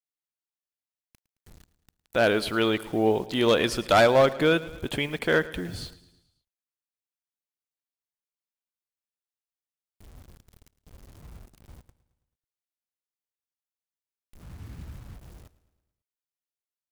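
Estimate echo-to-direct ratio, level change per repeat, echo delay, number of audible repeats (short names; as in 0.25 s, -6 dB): -17.0 dB, -5.0 dB, 0.109 s, 4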